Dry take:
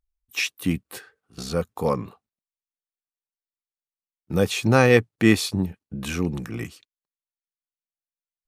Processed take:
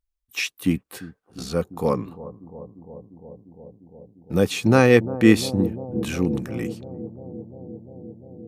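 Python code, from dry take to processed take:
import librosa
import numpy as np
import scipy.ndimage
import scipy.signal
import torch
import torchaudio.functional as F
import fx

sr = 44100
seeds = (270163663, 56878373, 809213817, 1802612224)

y = fx.echo_bbd(x, sr, ms=349, stages=2048, feedback_pct=83, wet_db=-14.0)
y = fx.dynamic_eq(y, sr, hz=290.0, q=0.99, threshold_db=-31.0, ratio=4.0, max_db=5)
y = y * 10.0 ** (-1.0 / 20.0)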